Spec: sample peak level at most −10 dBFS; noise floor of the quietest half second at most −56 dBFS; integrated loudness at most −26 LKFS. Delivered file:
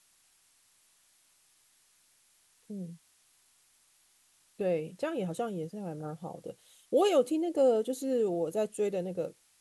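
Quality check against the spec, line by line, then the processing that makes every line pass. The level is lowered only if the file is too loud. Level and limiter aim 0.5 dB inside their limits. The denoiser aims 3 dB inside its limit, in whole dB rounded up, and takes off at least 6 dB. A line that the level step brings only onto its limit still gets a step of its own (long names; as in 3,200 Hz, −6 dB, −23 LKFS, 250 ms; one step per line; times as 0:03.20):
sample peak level −15.5 dBFS: in spec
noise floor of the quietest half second −67 dBFS: in spec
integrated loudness −31.5 LKFS: in spec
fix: no processing needed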